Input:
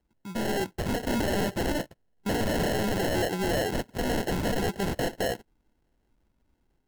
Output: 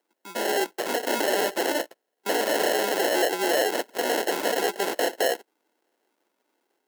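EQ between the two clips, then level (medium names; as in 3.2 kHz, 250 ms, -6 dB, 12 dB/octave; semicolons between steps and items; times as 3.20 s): high-pass 350 Hz 24 dB/octave; treble shelf 9.2 kHz +3.5 dB; +5.5 dB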